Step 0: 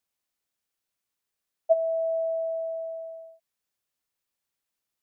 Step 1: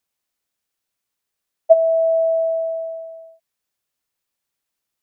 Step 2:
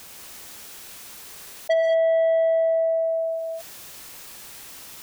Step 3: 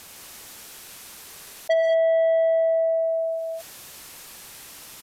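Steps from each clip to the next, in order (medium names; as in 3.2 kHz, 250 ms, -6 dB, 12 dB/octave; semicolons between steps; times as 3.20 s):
dynamic bell 570 Hz, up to +7 dB, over -36 dBFS, Q 1.3; trim +4 dB
saturation -15.5 dBFS, distortion -9 dB; gated-style reverb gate 230 ms rising, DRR 3.5 dB; level flattener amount 70%; trim -2.5 dB
resampled via 32 kHz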